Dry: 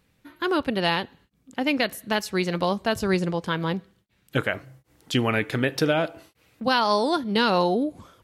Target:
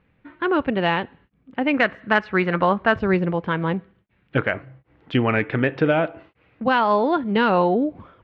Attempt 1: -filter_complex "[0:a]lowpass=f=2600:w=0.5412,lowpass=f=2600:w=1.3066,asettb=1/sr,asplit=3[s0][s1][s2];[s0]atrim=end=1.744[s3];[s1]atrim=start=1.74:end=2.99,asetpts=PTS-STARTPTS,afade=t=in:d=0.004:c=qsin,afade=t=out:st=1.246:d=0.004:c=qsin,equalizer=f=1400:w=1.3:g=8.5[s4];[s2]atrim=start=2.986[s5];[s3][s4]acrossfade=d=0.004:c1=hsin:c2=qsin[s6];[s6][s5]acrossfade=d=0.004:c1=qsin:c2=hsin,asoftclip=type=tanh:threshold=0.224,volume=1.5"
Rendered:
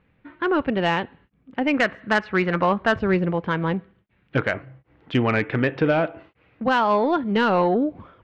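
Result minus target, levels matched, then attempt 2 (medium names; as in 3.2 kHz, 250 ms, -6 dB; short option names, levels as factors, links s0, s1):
saturation: distortion +15 dB
-filter_complex "[0:a]lowpass=f=2600:w=0.5412,lowpass=f=2600:w=1.3066,asettb=1/sr,asplit=3[s0][s1][s2];[s0]atrim=end=1.744[s3];[s1]atrim=start=1.74:end=2.99,asetpts=PTS-STARTPTS,afade=t=in:d=0.004:c=qsin,afade=t=out:st=1.246:d=0.004:c=qsin,equalizer=f=1400:w=1.3:g=8.5[s4];[s2]atrim=start=2.986[s5];[s3][s4]acrossfade=d=0.004:c1=hsin:c2=qsin[s6];[s6][s5]acrossfade=d=0.004:c1=qsin:c2=hsin,asoftclip=type=tanh:threshold=0.631,volume=1.5"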